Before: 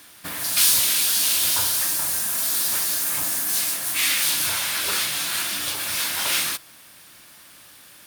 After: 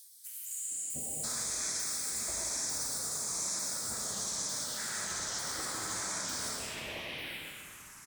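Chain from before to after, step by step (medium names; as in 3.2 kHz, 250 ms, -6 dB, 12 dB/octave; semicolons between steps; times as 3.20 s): sawtooth pitch modulation -9.5 st, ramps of 898 ms; peak limiter -17.5 dBFS, peak gain reduction 10.5 dB; reverse; upward compressor, threshold -36 dBFS; reverse; three bands offset in time highs, lows, mids 710/800 ms, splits 890/3200 Hz; touch-sensitive phaser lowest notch 390 Hz, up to 2.9 kHz, full sweep at -25.5 dBFS; reverberation RT60 1.8 s, pre-delay 70 ms, DRR -0.5 dB; spectral replace 0.31–1.21 s, 850–6700 Hz before; trim -7 dB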